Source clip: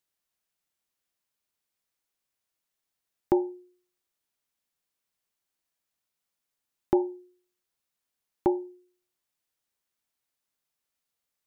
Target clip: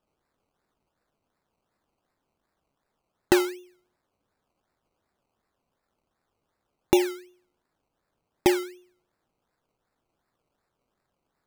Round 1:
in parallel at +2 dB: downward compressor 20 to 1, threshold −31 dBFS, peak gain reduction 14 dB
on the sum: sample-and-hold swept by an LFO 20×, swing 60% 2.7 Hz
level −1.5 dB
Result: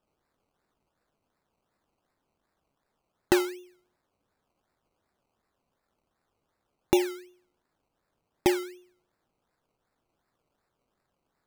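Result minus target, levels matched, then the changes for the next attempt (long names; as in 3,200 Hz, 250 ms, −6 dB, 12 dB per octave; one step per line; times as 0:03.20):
downward compressor: peak gain reduction +8.5 dB
change: downward compressor 20 to 1, threshold −22 dBFS, peak gain reduction 5.5 dB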